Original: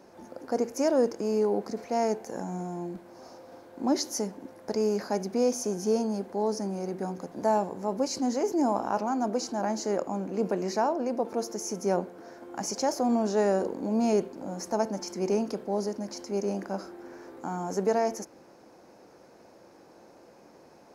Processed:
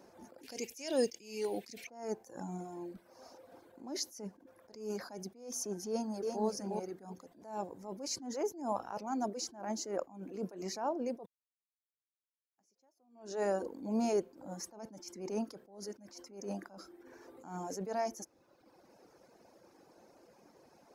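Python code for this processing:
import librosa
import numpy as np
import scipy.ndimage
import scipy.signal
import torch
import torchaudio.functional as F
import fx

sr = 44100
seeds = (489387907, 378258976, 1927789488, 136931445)

y = fx.high_shelf_res(x, sr, hz=1800.0, db=13.0, q=3.0, at=(0.43, 1.87))
y = fx.echo_throw(y, sr, start_s=5.88, length_s=0.57, ms=340, feedback_pct=25, wet_db=-4.0)
y = fx.edit(y, sr, fx.silence(start_s=11.26, length_s=1.32), tone=tone)
y = fx.dereverb_blind(y, sr, rt60_s=1.1)
y = fx.high_shelf(y, sr, hz=7100.0, db=5.0)
y = fx.attack_slew(y, sr, db_per_s=110.0)
y = y * librosa.db_to_amplitude(-5.0)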